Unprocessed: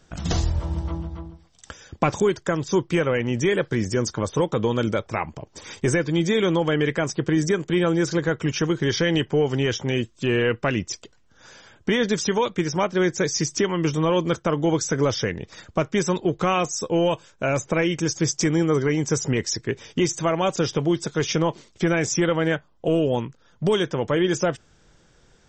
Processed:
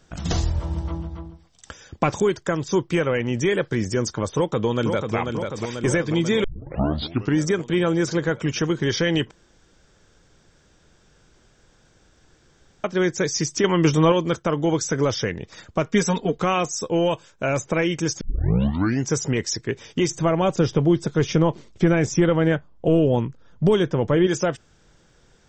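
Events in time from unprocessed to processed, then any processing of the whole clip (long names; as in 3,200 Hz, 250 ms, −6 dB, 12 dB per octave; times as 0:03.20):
0:04.36–0:05.16: delay throw 490 ms, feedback 70%, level −5.5 dB
0:06.44: tape start 0.95 s
0:09.31–0:12.84: fill with room tone
0:13.64–0:14.12: clip gain +5 dB
0:15.86–0:16.39: comb filter 4.3 ms, depth 85%
0:18.21: tape start 0.89 s
0:20.10–0:24.27: spectral tilt −2 dB per octave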